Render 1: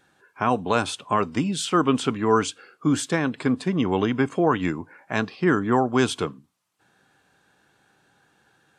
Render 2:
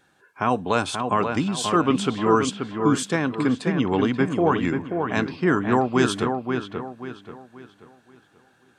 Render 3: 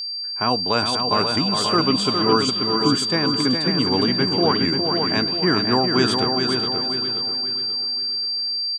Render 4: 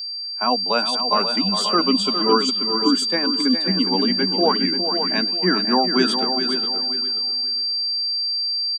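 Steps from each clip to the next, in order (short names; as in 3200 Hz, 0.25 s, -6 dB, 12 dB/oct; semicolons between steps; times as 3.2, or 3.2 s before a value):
dark delay 0.533 s, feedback 35%, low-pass 2800 Hz, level -5.5 dB
gate with hold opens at -46 dBFS; whine 4700 Hz -26 dBFS; feedback echo 0.41 s, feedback 23%, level -6 dB
per-bin expansion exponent 1.5; rippled Chebyshev high-pass 180 Hz, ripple 3 dB; gain +4.5 dB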